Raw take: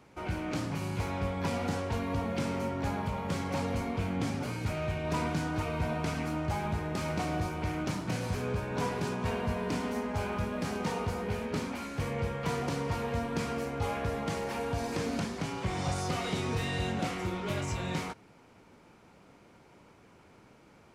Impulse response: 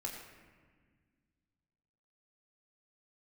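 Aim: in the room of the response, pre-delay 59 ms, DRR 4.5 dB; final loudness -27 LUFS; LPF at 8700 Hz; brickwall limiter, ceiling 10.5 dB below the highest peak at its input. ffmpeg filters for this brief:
-filter_complex "[0:a]lowpass=8.7k,alimiter=level_in=7dB:limit=-24dB:level=0:latency=1,volume=-7dB,asplit=2[a][b];[1:a]atrim=start_sample=2205,adelay=59[c];[b][c]afir=irnorm=-1:irlink=0,volume=-4.5dB[d];[a][d]amix=inputs=2:normalize=0,volume=11dB"

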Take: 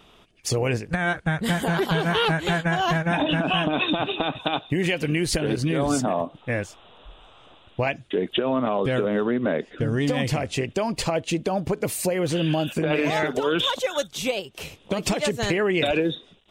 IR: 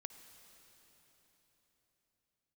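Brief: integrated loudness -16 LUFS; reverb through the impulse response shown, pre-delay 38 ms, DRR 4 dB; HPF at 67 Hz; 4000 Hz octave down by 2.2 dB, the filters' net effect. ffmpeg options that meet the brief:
-filter_complex "[0:a]highpass=67,equalizer=f=4k:t=o:g=-3,asplit=2[a][b];[1:a]atrim=start_sample=2205,adelay=38[c];[b][c]afir=irnorm=-1:irlink=0,volume=0.5dB[d];[a][d]amix=inputs=2:normalize=0,volume=7dB"

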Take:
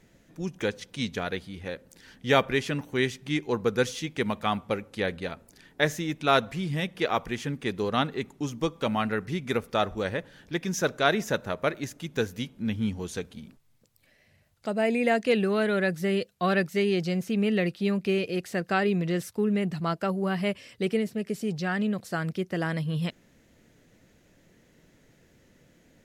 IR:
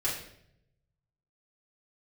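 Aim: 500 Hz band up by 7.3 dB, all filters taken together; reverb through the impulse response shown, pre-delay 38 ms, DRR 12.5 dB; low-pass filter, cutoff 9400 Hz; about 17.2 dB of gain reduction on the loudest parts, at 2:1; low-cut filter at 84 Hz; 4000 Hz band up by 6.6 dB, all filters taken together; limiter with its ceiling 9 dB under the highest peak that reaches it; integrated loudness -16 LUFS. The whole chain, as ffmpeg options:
-filter_complex "[0:a]highpass=84,lowpass=9.4k,equalizer=f=500:t=o:g=9,equalizer=f=4k:t=o:g=8,acompressor=threshold=-44dB:ratio=2,alimiter=level_in=4dB:limit=-24dB:level=0:latency=1,volume=-4dB,asplit=2[a][b];[1:a]atrim=start_sample=2205,adelay=38[c];[b][c]afir=irnorm=-1:irlink=0,volume=-19.5dB[d];[a][d]amix=inputs=2:normalize=0,volume=23dB"

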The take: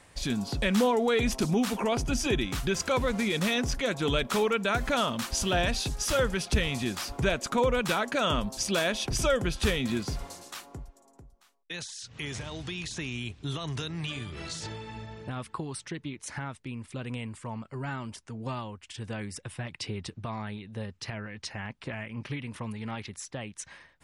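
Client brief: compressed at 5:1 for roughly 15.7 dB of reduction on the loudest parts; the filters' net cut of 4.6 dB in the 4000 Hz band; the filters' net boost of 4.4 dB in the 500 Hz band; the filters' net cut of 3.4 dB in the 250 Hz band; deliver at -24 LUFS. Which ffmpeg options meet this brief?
-af "equalizer=f=250:t=o:g=-6,equalizer=f=500:t=o:g=6.5,equalizer=f=4k:t=o:g=-6,acompressor=threshold=-36dB:ratio=5,volume=16dB"

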